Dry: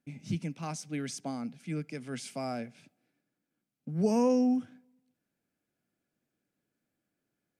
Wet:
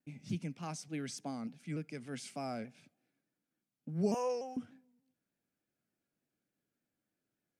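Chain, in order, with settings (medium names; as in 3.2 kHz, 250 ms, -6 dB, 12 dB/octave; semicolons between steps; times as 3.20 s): 4.14–4.57 s: high-pass 490 Hz 24 dB/octave; vibrato with a chosen wave saw down 3.4 Hz, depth 100 cents; trim -4.5 dB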